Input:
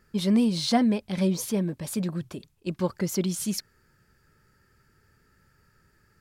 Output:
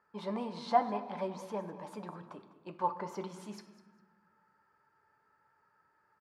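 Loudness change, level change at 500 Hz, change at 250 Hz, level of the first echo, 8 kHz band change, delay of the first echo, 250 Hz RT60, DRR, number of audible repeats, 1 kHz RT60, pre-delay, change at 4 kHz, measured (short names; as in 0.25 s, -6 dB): -10.0 dB, -6.5 dB, -17.5 dB, -17.0 dB, -24.0 dB, 0.201 s, 1.7 s, 6.0 dB, 2, 1.3 s, 7 ms, -18.0 dB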